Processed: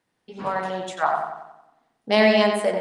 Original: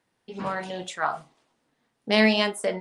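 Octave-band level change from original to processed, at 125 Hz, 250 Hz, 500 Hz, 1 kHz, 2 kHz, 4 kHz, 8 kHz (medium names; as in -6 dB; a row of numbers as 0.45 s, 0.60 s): +0.5 dB, +1.0 dB, +6.0 dB, +6.0 dB, +1.5 dB, -0.5 dB, -1.0 dB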